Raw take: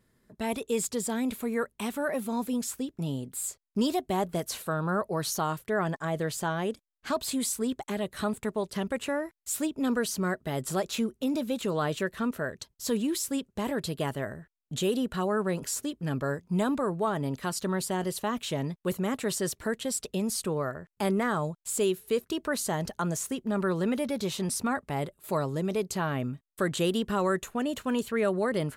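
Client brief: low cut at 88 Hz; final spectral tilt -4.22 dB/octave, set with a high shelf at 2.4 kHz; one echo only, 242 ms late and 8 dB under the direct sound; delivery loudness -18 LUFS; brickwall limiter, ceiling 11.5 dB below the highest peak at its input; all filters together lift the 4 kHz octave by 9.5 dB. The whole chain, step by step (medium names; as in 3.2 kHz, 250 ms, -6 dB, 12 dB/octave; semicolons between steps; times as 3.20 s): high-pass 88 Hz; treble shelf 2.4 kHz +5.5 dB; peaking EQ 4 kHz +7 dB; peak limiter -24.5 dBFS; delay 242 ms -8 dB; trim +15 dB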